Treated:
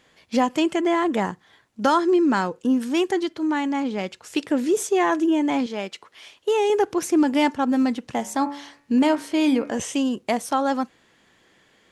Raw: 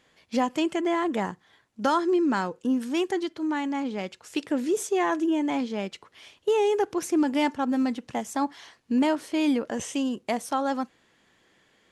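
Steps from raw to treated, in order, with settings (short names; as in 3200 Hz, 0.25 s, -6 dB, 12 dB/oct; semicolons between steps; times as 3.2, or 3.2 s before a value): 5.66–6.7 low shelf 250 Hz -11 dB; 8.16–9.79 de-hum 71.37 Hz, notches 37; gain +4.5 dB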